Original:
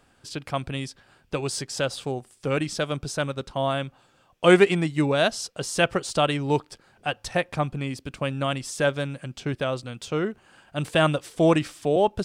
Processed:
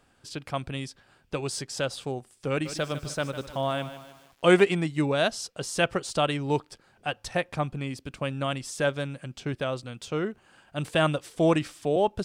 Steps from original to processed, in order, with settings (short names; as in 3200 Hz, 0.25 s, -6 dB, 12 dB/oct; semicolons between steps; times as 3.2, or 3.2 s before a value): 2.5–4.61 lo-fi delay 0.151 s, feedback 55%, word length 7-bit, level -12 dB; gain -3 dB